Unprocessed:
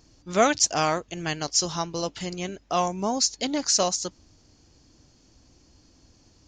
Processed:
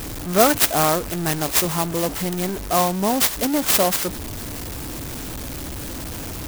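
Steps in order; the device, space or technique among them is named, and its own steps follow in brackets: early CD player with a faulty converter (zero-crossing step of -29 dBFS; clock jitter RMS 0.091 ms); gain +4 dB

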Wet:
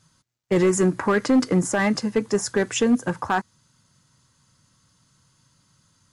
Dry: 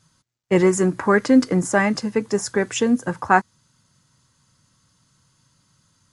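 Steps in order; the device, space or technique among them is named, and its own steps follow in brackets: limiter into clipper (limiter -9 dBFS, peak gain reduction 7.5 dB; hard clip -12.5 dBFS, distortion -19 dB)

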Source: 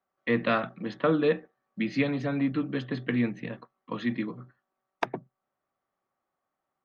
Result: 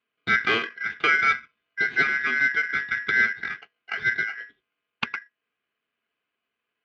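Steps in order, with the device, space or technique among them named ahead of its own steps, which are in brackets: ring modulator pedal into a guitar cabinet (polarity switched at an audio rate 1800 Hz; speaker cabinet 79–3500 Hz, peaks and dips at 82 Hz -7 dB, 230 Hz +7 dB, 410 Hz +8 dB, 590 Hz -9 dB, 930 Hz -6 dB, 1700 Hz +8 dB); gain +2 dB

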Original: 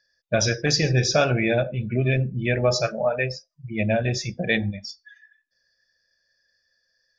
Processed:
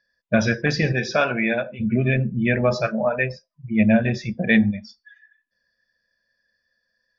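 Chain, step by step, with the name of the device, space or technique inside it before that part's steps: 0.92–1.79 HPF 300 Hz -> 760 Hz 6 dB/oct; dynamic EQ 1700 Hz, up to +5 dB, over -40 dBFS, Q 1.2; inside a cardboard box (LPF 3300 Hz 12 dB/oct; small resonant body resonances 220/1000 Hz, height 12 dB, ringing for 90 ms)

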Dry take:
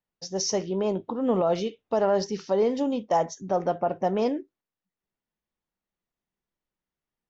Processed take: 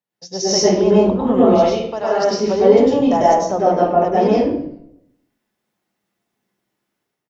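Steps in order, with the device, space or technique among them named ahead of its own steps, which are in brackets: 1.46–2.21 HPF 410 Hz -> 1400 Hz 6 dB/oct; far laptop microphone (reverb RT60 0.65 s, pre-delay 95 ms, DRR -7 dB; HPF 120 Hz 24 dB/oct; AGC gain up to 8 dB); frequency-shifting echo 0.128 s, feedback 39%, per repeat -140 Hz, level -22 dB

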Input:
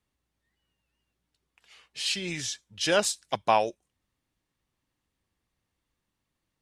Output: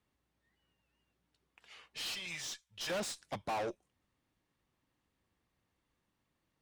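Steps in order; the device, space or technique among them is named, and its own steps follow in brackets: 2.08–2.9 passive tone stack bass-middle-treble 10-0-10; tube preamp driven hard (tube stage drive 36 dB, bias 0.3; low shelf 84 Hz -6.5 dB; high shelf 3500 Hz -8 dB); gain +3 dB

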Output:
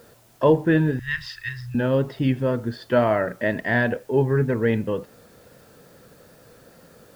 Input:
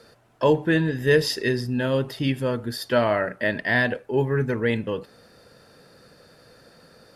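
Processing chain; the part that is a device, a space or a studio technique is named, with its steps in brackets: 0.99–1.75 inverse Chebyshev band-stop 180–700 Hz, stop band 40 dB; cassette deck with a dirty head (tape spacing loss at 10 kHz 29 dB; wow and flutter; white noise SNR 35 dB); gain +3.5 dB

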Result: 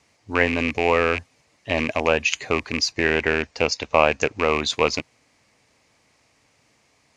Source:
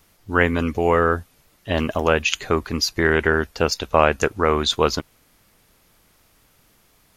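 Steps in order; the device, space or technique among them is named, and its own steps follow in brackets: 2.92–4.5 LPF 7600 Hz 24 dB/oct; car door speaker with a rattle (rattling part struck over -27 dBFS, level -13 dBFS; speaker cabinet 110–7600 Hz, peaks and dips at 180 Hz -9 dB, 370 Hz -5 dB, 1400 Hz -8 dB, 2200 Hz +4 dB, 3400 Hz -6 dB)

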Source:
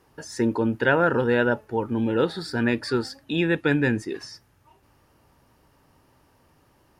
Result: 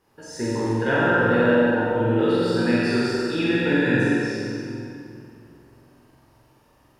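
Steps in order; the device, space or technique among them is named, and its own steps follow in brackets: tunnel (flutter echo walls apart 7.8 m, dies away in 0.94 s; reverb RT60 2.8 s, pre-delay 8 ms, DRR -6 dB); gain -7 dB

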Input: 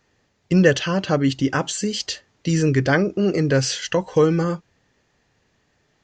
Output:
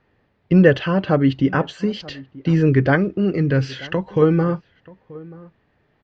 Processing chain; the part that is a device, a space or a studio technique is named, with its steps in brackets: 2.95–4.22 dynamic EQ 650 Hz, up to -7 dB, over -32 dBFS, Q 0.7; shout across a valley (air absorption 380 m; outdoor echo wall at 160 m, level -21 dB); gain +3.5 dB

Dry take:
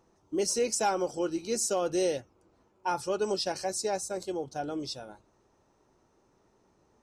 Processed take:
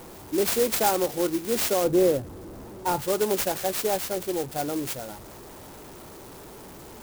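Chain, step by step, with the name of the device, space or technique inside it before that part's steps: early CD player with a faulty converter (zero-crossing step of -43 dBFS; clock jitter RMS 0.098 ms); 1.84–3.02 tilt shelf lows +5.5 dB, about 830 Hz; gain +4.5 dB

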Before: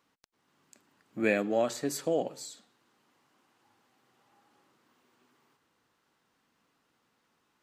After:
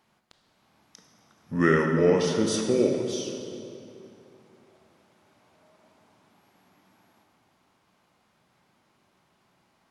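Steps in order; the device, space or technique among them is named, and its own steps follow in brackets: slowed and reverbed (varispeed -23%; reverb RT60 2.8 s, pre-delay 19 ms, DRR 3 dB); gain +5 dB

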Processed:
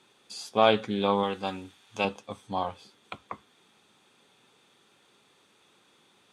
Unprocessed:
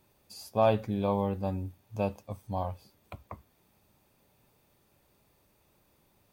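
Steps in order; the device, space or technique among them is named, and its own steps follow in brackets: full-range speaker at full volume (Doppler distortion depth 0.14 ms; speaker cabinet 280–8800 Hz, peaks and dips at 310 Hz -3 dB, 610 Hz -10 dB, 920 Hz -3 dB, 1400 Hz +4 dB, 3400 Hz +9 dB, 5000 Hz -4 dB); 1.23–2.05 tilt shelf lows -5.5 dB, about 760 Hz; gain +8.5 dB

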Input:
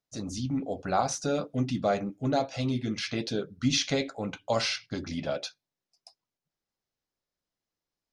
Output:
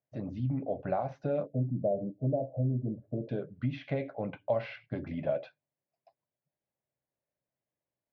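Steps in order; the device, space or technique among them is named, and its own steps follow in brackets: 1.46–3.29 steep low-pass 640 Hz 36 dB/oct; bass amplifier (compressor 4:1, threshold -29 dBFS, peak gain reduction 8 dB; speaker cabinet 63–2300 Hz, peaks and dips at 130 Hz +9 dB, 600 Hz +9 dB, 1300 Hz -8 dB); gain -2.5 dB

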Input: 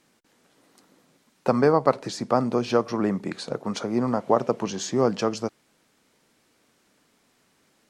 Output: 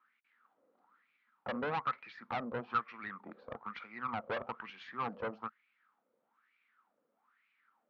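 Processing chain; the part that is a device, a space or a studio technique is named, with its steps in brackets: wah-wah guitar rig (wah 1.1 Hz 520–2400 Hz, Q 6.7; tube stage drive 34 dB, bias 0.55; speaker cabinet 93–3900 Hz, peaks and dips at 130 Hz +3 dB, 220 Hz +8 dB, 400 Hz -4 dB, 620 Hz -8 dB, 1300 Hz +8 dB); gain +3.5 dB

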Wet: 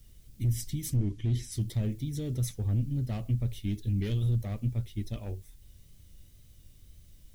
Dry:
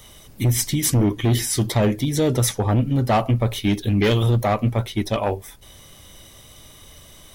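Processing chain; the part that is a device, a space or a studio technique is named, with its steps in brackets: plain cassette with noise reduction switched in (mismatched tape noise reduction decoder only; wow and flutter; white noise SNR 28 dB); 0.96–1.52 LPF 7700 Hz 12 dB/oct; passive tone stack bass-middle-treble 10-0-1; gain +3.5 dB

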